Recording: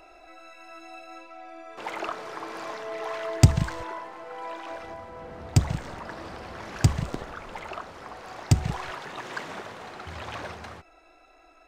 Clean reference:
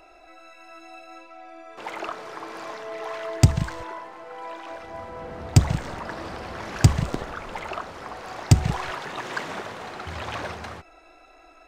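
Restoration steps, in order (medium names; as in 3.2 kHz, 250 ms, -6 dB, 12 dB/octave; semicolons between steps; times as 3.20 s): gain correction +4.5 dB, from 4.94 s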